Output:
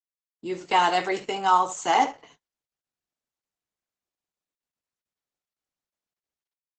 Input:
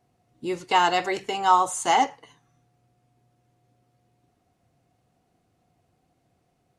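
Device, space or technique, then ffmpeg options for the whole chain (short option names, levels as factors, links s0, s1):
video call: -filter_complex "[0:a]highpass=f=44:p=1,asettb=1/sr,asplit=3[s0][s1][s2];[s0]atrim=end=1.624[s3];[s1]atrim=start=1.62:end=2.07,asetpts=PTS-STARTPTS,afade=t=in:d=0.004:c=qsin,afade=t=out:st=0.446:d=0.004:c=qsin,highshelf=f=7800:g=-3.5[s4];[s2]atrim=start=2.066[s5];[s3][s4]acrossfade=d=0.004:c1=hsin:c2=qsin[s6];[s6][s5]acrossfade=d=0.004:c1=qsin:c2=hsin,highpass=f=140:w=0.5412,highpass=f=140:w=1.3066,aecho=1:1:21|72:0.316|0.2,dynaudnorm=f=120:g=9:m=3.16,agate=range=0.0141:threshold=0.00501:ratio=16:detection=peak,volume=0.531" -ar 48000 -c:a libopus -b:a 12k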